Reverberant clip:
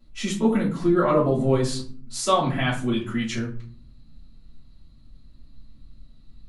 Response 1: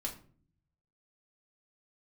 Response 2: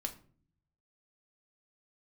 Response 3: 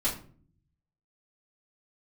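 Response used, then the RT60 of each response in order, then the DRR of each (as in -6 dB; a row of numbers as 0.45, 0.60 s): 3; 0.45, 0.45, 0.45 s; -1.5, 3.5, -10.0 dB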